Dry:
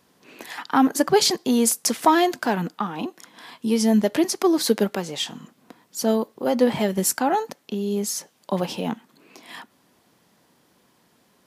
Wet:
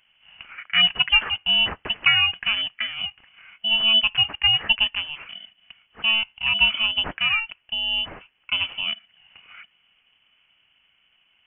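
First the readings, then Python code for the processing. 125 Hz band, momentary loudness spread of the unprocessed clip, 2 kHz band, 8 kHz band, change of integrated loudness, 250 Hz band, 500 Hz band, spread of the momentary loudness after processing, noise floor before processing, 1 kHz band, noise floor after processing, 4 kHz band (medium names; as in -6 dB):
-9.0 dB, 15 LU, +11.0 dB, under -40 dB, +2.5 dB, -23.0 dB, -21.5 dB, 12 LU, -63 dBFS, -10.0 dB, -66 dBFS, +12.5 dB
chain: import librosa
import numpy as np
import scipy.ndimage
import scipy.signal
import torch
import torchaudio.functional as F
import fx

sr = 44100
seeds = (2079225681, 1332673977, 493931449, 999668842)

y = fx.bit_reversed(x, sr, seeds[0], block=16)
y = fx.freq_invert(y, sr, carrier_hz=3200)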